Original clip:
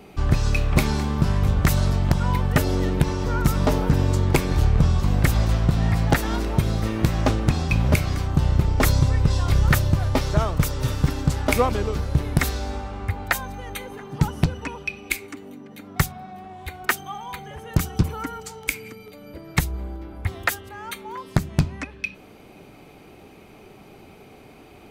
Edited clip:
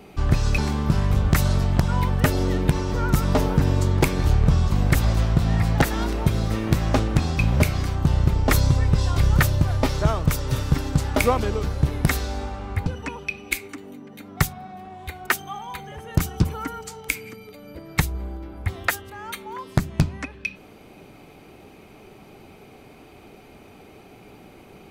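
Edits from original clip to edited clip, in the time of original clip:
0.58–0.90 s: delete
13.18–14.45 s: delete

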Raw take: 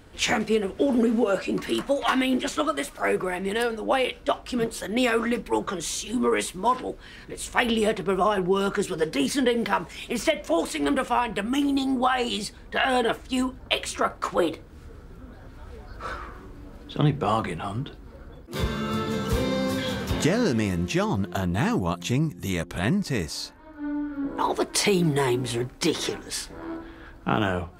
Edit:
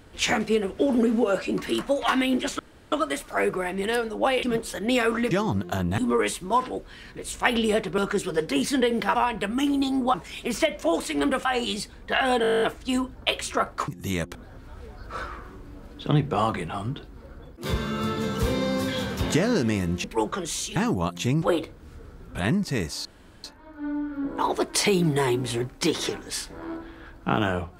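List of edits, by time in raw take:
2.59 s: insert room tone 0.33 s
4.10–4.51 s: delete
5.39–6.11 s: swap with 20.94–21.61 s
8.11–8.62 s: delete
11.10–12.09 s: move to 9.79 s
13.06 s: stutter 0.02 s, 11 plays
14.32–15.25 s: swap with 22.27–22.74 s
23.44 s: insert room tone 0.39 s

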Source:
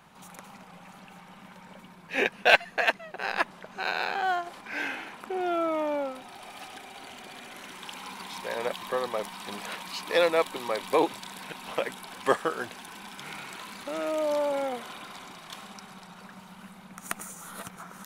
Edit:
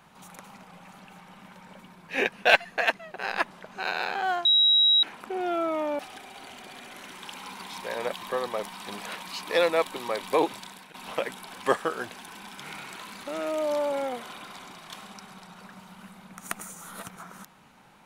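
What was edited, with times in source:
4.45–5.03 s: bleep 3.85 kHz -16.5 dBFS
5.99–6.59 s: delete
11.19–11.54 s: fade out, to -14 dB

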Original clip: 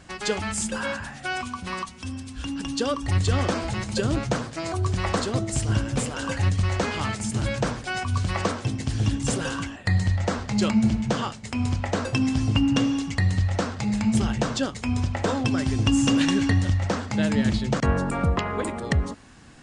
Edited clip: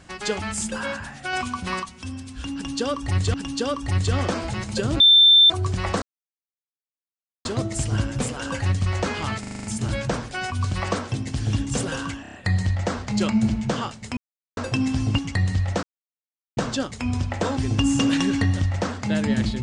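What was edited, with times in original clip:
1.33–1.80 s: gain +4 dB
2.54–3.34 s: loop, 2 plays
4.20–4.70 s: bleep 3.56 kHz -9.5 dBFS
5.22 s: insert silence 1.43 s
7.17 s: stutter 0.04 s, 7 plays
9.75 s: stutter 0.03 s, 5 plays
11.58–11.98 s: mute
12.59–13.01 s: delete
13.66–14.40 s: mute
15.40–15.65 s: delete

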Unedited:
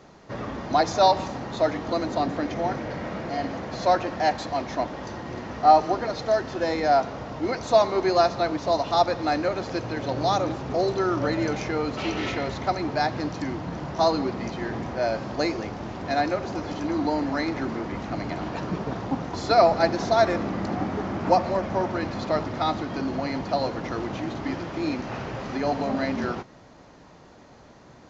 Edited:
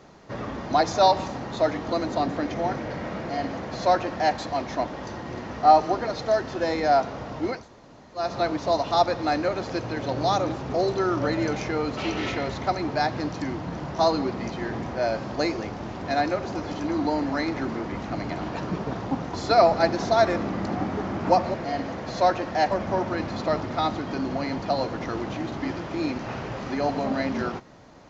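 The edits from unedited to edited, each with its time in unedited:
3.19–4.36 s: copy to 21.54 s
7.57–8.25 s: room tone, crossfade 0.24 s

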